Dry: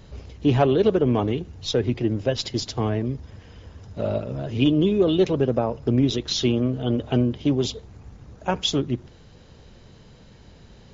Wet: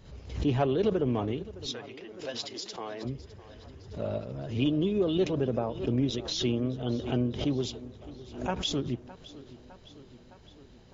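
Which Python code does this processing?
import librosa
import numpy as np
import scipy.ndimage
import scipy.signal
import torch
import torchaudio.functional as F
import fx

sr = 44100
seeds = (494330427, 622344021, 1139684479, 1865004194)

y = fx.highpass(x, sr, hz=fx.line((1.66, 1100.0), (3.04, 480.0)), slope=12, at=(1.66, 3.04), fade=0.02)
y = fx.echo_tape(y, sr, ms=610, feedback_pct=71, wet_db=-16.5, lp_hz=5500.0, drive_db=8.0, wow_cents=16)
y = fx.pre_swell(y, sr, db_per_s=100.0)
y = y * 10.0 ** (-8.0 / 20.0)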